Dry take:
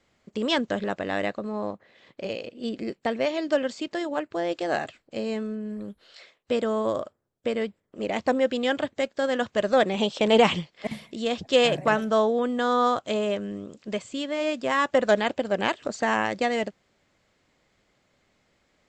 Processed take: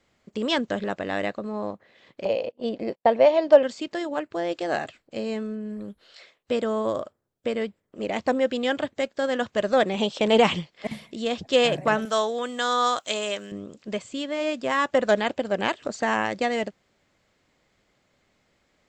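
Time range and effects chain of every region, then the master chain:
2.25–3.63 s: gate -42 dBFS, range -26 dB + low-pass 5.2 kHz + high-order bell 710 Hz +10 dB 1.3 oct
12.05–13.52 s: tilt EQ +4 dB/octave + band-stop 4.7 kHz, Q 24
whole clip: none

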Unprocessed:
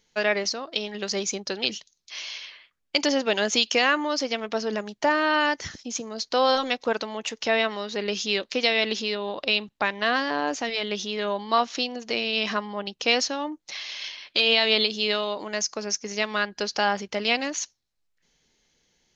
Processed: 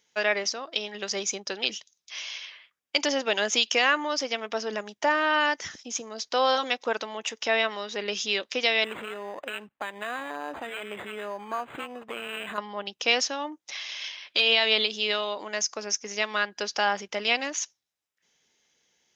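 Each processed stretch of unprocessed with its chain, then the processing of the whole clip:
8.84–12.58 s: compression 2:1, threshold -30 dBFS + decimation joined by straight lines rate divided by 8×
whole clip: high-pass 71 Hz; bass shelf 300 Hz -11.5 dB; band-stop 4.3 kHz, Q 7.8

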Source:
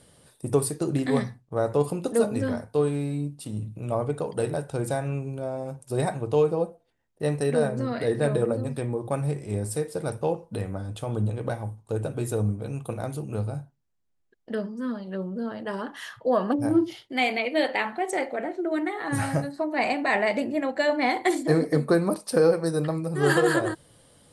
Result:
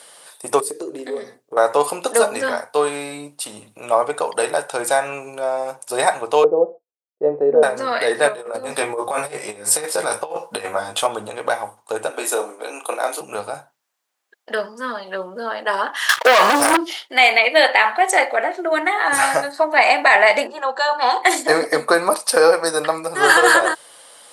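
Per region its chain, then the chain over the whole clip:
0.60–1.57 s: FFT filter 160 Hz 0 dB, 430 Hz +14 dB, 870 Hz -10 dB, 7.1 kHz -3 dB + compression 2.5:1, threshold -34 dBFS
6.44–7.63 s: expander -52 dBFS + resonant low-pass 430 Hz, resonance Q 2
8.28–11.07 s: doubling 19 ms -2 dB + compressor with a negative ratio -28 dBFS, ratio -0.5
12.10–13.21 s: steep high-pass 230 Hz 72 dB/octave + doubling 32 ms -6.5 dB
16.09–16.77 s: waveshaping leveller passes 3 + treble shelf 2.1 kHz +10.5 dB
20.47–21.23 s: low-pass 5.4 kHz + static phaser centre 430 Hz, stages 8
whole clip: Chebyshev high-pass 870 Hz, order 2; loudness maximiser +17 dB; trim -1 dB

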